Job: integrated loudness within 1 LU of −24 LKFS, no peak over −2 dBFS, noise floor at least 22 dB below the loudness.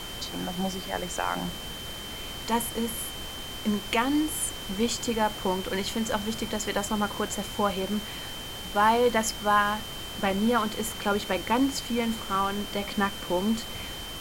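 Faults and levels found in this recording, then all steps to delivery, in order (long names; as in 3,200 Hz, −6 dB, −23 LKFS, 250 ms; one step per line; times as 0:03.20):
interfering tone 3,100 Hz; level of the tone −39 dBFS; background noise floor −38 dBFS; target noise floor −51 dBFS; integrated loudness −28.5 LKFS; sample peak −10.5 dBFS; target loudness −24.0 LKFS
→ notch filter 3,100 Hz, Q 30
noise reduction from a noise print 13 dB
level +4.5 dB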